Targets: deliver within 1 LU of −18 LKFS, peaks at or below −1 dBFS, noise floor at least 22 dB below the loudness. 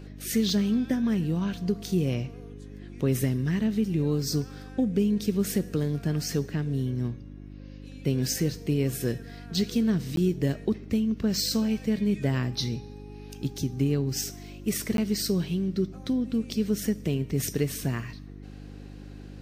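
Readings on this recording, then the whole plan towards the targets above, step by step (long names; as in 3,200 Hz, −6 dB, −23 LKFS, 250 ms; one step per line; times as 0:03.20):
number of dropouts 2; longest dropout 12 ms; mains hum 50 Hz; hum harmonics up to 300 Hz; level of the hum −42 dBFS; integrated loudness −28.0 LKFS; sample peak −14.0 dBFS; target loudness −18.0 LKFS
→ repair the gap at 0:10.16/0:14.97, 12 ms
hum removal 50 Hz, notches 6
level +10 dB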